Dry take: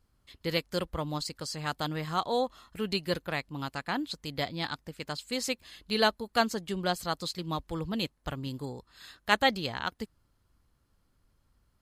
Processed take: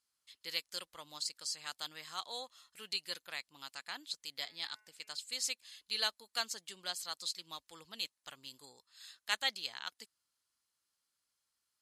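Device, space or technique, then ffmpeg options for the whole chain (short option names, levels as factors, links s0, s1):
piezo pickup straight into a mixer: -filter_complex "[0:a]asettb=1/sr,asplit=3[s0][s1][s2];[s0]atrim=end=4.344[s3];[s1]atrim=start=4.34:end=5.16,asetpts=PTS-STARTPTS,afade=t=in:d=0.004:c=qsin,afade=t=out:st=0.816:d=0.004:c=qsin,bandreject=f=213.1:t=h:w=4,bandreject=f=426.2:t=h:w=4,bandreject=f=639.3:t=h:w=4,bandreject=f=852.4:t=h:w=4,bandreject=f=1065.5:t=h:w=4,bandreject=f=1278.6:t=h:w=4,bandreject=f=1491.7:t=h:w=4,bandreject=f=1704.8:t=h:w=4,bandreject=f=1917.9:t=h:w=4,bandreject=f=2131:t=h:w=4,bandreject=f=2344.1:t=h:w=4,bandreject=f=2557.2:t=h:w=4,bandreject=f=2770.3:t=h:w=4[s4];[s2]atrim=start=5.156[s5];[s3][s4]acrossfade=d=0.004:c1=hsin:c2=qsin[s6];[s6][s5]acrossfade=d=0.004:c1=qsin:c2=hsin,lowpass=8500,aderivative,volume=1.33"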